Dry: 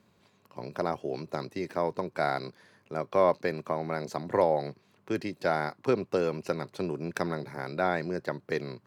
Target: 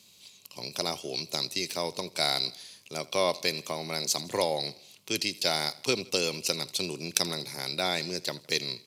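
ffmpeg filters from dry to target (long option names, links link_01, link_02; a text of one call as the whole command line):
ffmpeg -i in.wav -af "aecho=1:1:81|162|243|324:0.0841|0.0438|0.0228|0.0118,aresample=32000,aresample=44100,aexciter=amount=7.2:drive=9:freq=2500,volume=-4dB" out.wav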